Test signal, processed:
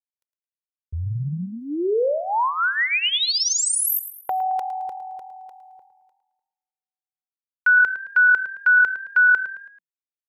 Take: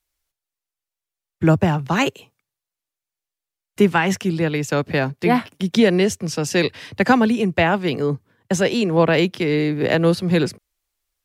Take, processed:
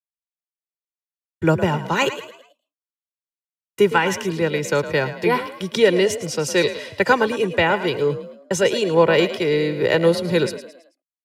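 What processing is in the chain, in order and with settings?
expander -40 dBFS; low shelf 86 Hz -11 dB; comb 2.1 ms, depth 65%; on a send: frequency-shifting echo 0.109 s, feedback 41%, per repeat +41 Hz, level -12.5 dB; on the sum: gain -1 dB

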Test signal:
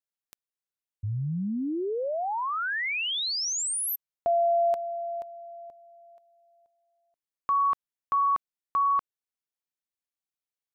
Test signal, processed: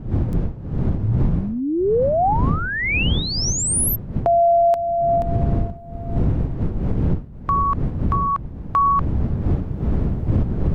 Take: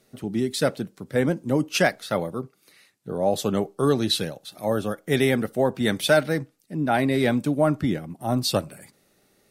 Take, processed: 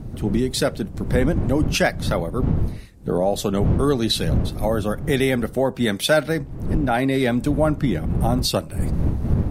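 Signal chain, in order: wind noise 140 Hz -28 dBFS; recorder AGC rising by 20 dB/s; gain +1 dB

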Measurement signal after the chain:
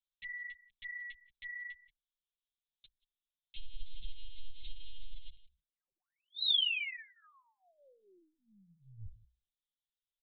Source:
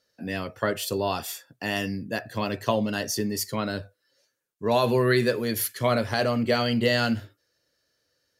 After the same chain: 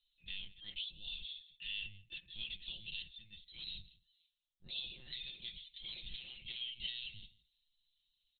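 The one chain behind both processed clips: limiter -18.5 dBFS; inverse Chebyshev band-stop 140–1600 Hz, stop band 50 dB; bell 70 Hz -2 dB 0.4 oct; notches 60/120/180/240 Hz; echo 0.169 s -21 dB; compressor 2:1, threshold -43 dBFS; LPC vocoder at 8 kHz pitch kept; comb 5.6 ms, depth 56%; gain +8.5 dB

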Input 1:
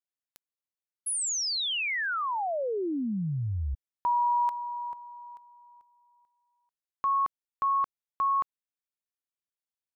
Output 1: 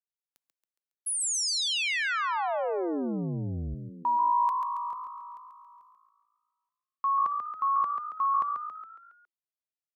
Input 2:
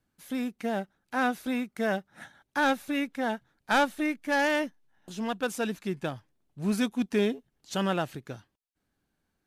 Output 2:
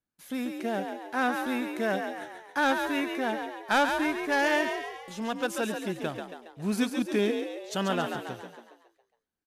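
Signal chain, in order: low shelf 150 Hz -5.5 dB; gate with hold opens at -54 dBFS, range -12 dB; frequency-shifting echo 0.138 s, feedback 51%, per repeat +55 Hz, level -6 dB

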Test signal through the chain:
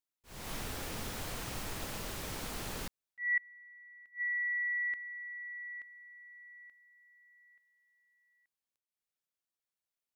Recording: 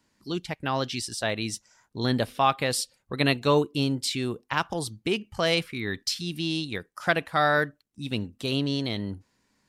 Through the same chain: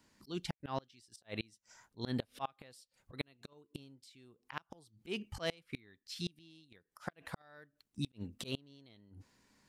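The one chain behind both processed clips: auto swell 0.288 s; flipped gate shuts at -24 dBFS, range -31 dB

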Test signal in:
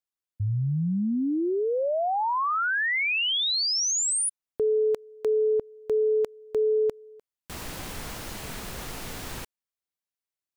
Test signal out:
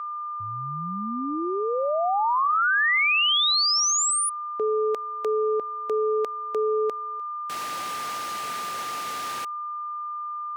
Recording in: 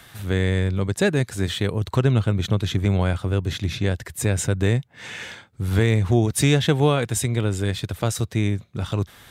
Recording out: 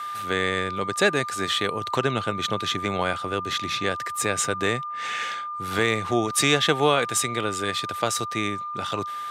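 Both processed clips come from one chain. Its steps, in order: whine 1200 Hz -33 dBFS; weighting filter A; gain +3 dB

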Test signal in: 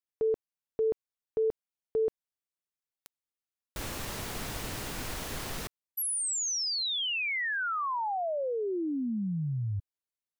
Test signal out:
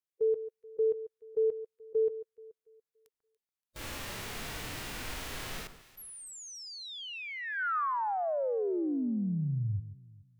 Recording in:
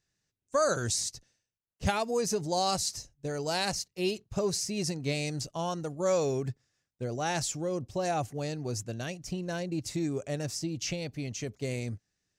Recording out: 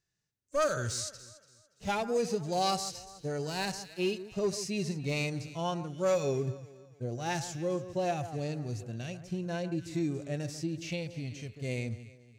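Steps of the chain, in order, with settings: dynamic EQ 2400 Hz, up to +6 dB, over -47 dBFS, Q 0.75; overloaded stage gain 22.5 dB; echo with dull and thin repeats by turns 0.143 s, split 1600 Hz, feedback 56%, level -12.5 dB; harmonic-percussive split percussive -16 dB

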